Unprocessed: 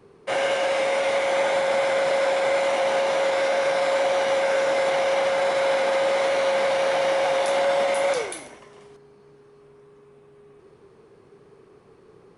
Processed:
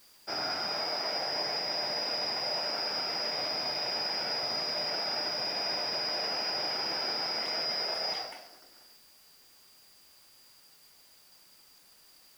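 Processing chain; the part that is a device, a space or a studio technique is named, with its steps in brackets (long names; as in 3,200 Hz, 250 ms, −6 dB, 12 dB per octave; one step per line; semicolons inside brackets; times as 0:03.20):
split-band scrambled radio (band-splitting scrambler in four parts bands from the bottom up 2341; band-pass filter 300–3,400 Hz; white noise bed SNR 26 dB)
level −4.5 dB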